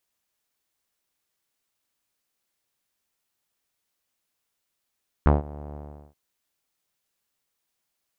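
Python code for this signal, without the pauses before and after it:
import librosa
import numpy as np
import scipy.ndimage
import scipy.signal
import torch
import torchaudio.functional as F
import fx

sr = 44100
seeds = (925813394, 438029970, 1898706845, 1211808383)

y = fx.sub_voice(sr, note=38, wave='saw', cutoff_hz=750.0, q=2.0, env_oct=1.0, env_s=0.06, attack_ms=1.2, decay_s=0.16, sustain_db=-23, release_s=0.39, note_s=0.49, slope=12)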